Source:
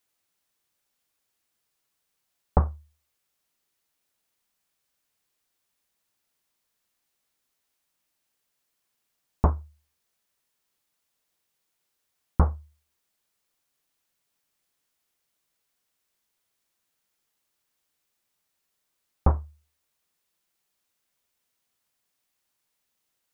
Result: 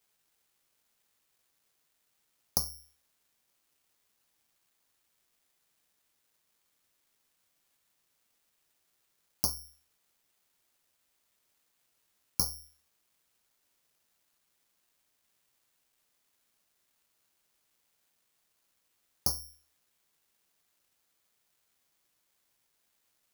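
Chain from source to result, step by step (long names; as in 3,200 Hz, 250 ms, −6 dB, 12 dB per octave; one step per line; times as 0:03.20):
high-pass filter 100 Hz
downward compressor 4 to 1, threshold −30 dBFS, peak gain reduction 11 dB
bad sample-rate conversion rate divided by 8×, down none, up zero stuff
level −6.5 dB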